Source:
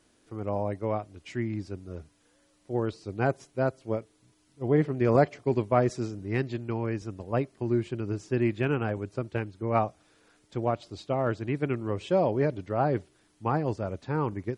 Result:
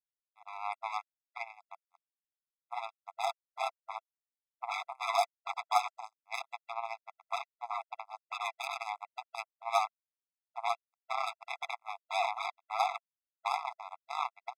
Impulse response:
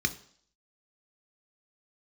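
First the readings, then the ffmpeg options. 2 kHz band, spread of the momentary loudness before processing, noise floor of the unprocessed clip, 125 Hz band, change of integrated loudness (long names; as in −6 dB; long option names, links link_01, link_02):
−2.0 dB, 10 LU, −66 dBFS, below −40 dB, −7.5 dB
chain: -af "acrusher=bits=3:mix=0:aa=0.5,tremolo=f=100:d=0.788,afftfilt=real='re*eq(mod(floor(b*sr/1024/670),2),1)':imag='im*eq(mod(floor(b*sr/1024/670),2),1)':win_size=1024:overlap=0.75,volume=3dB"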